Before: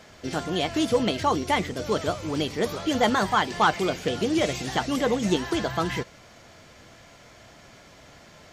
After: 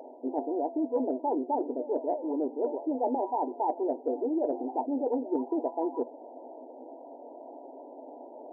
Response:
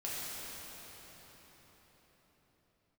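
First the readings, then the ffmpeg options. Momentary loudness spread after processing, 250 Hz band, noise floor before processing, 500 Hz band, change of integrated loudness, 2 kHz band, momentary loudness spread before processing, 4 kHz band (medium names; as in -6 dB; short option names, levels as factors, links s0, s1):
17 LU, -4.0 dB, -51 dBFS, -3.0 dB, -5.5 dB, under -40 dB, 6 LU, under -40 dB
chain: -af "afftfilt=real='re*between(b*sr/4096,240,990)':imag='im*between(b*sr/4096,240,990)':win_size=4096:overlap=0.75,areverse,acompressor=threshold=0.0126:ratio=4,areverse,volume=2.82"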